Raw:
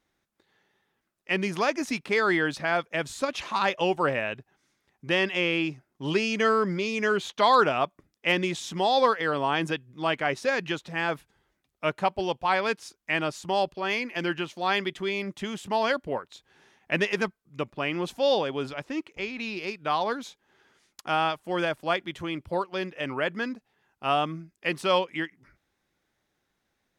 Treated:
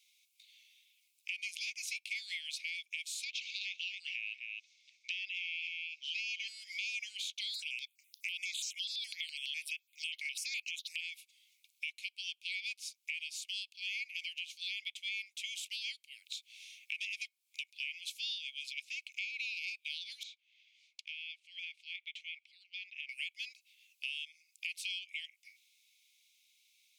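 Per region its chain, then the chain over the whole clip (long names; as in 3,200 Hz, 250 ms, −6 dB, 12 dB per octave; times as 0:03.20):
0:03.24–0:06.48: low-pass filter 6,200 Hz 24 dB per octave + single-tap delay 257 ms −9.5 dB
0:07.54–0:11.01: high-shelf EQ 2,000 Hz +12 dB + step-sequenced phaser 12 Hz 850–3,500 Hz
0:20.23–0:23.09: downward compressor 2 to 1, threshold −37 dBFS + head-to-tape spacing loss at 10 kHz 30 dB
whole clip: Chebyshev high-pass filter 2,200 Hz, order 8; brickwall limiter −25 dBFS; downward compressor 4 to 1, threshold −54 dBFS; level +13 dB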